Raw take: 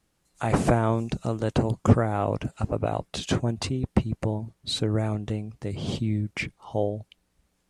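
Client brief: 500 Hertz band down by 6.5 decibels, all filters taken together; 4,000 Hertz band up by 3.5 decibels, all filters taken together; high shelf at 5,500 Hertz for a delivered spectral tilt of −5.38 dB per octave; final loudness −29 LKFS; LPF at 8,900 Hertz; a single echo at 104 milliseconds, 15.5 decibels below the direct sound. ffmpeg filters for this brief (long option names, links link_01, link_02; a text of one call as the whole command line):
ffmpeg -i in.wav -af "lowpass=8900,equalizer=frequency=500:width_type=o:gain=-8.5,equalizer=frequency=4000:width_type=o:gain=6.5,highshelf=frequency=5500:gain=-6.5,aecho=1:1:104:0.168,volume=-0.5dB" out.wav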